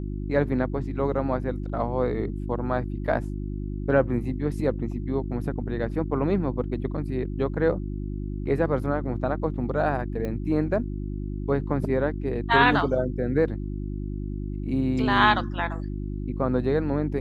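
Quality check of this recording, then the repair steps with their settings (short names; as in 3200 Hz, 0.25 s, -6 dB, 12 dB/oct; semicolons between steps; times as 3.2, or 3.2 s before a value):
hum 50 Hz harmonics 7 -31 dBFS
10.25 pop -20 dBFS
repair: de-click; de-hum 50 Hz, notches 7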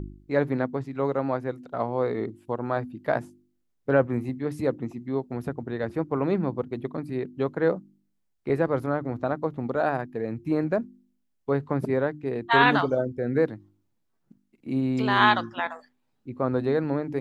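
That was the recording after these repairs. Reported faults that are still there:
none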